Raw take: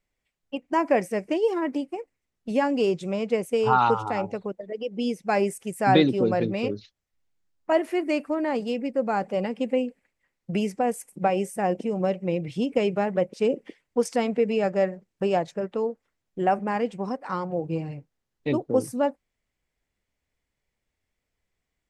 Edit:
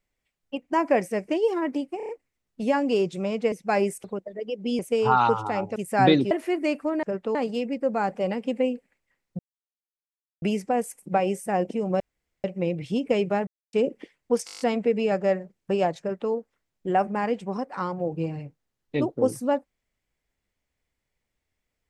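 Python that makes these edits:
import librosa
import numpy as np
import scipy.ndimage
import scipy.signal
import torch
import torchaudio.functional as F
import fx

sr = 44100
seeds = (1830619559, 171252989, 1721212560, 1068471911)

y = fx.edit(x, sr, fx.stutter(start_s=1.97, slice_s=0.03, count=5),
    fx.swap(start_s=3.4, length_s=0.97, other_s=5.12, other_length_s=0.52),
    fx.cut(start_s=6.19, length_s=1.57),
    fx.insert_silence(at_s=10.52, length_s=1.03),
    fx.insert_room_tone(at_s=12.1, length_s=0.44),
    fx.silence(start_s=13.13, length_s=0.26),
    fx.stutter(start_s=14.12, slice_s=0.02, count=8),
    fx.duplicate(start_s=15.52, length_s=0.32, to_s=8.48), tone=tone)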